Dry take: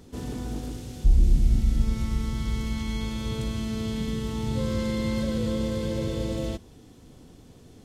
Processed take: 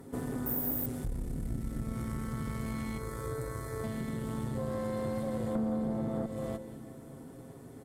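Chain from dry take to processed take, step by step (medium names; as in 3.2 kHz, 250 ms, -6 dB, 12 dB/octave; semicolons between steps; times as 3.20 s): high-pass 160 Hz 6 dB/octave; band-stop 1.6 kHz, Q 30; comb 7.4 ms, depth 45%; 2.98–3.84 s: static phaser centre 780 Hz, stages 6; 5.55–6.26 s: small resonant body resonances 220/670/1200 Hz, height 18 dB, ringing for 35 ms; compression 5:1, threshold -35 dBFS, peak gain reduction 18.5 dB; delay 960 ms -21 dB; reverberation RT60 1.0 s, pre-delay 152 ms, DRR 11 dB; 0.46–0.86 s: careless resampling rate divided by 3×, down none, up zero stuff; valve stage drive 31 dB, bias 0.65; high-order bell 4.1 kHz -13 dB; trim +6 dB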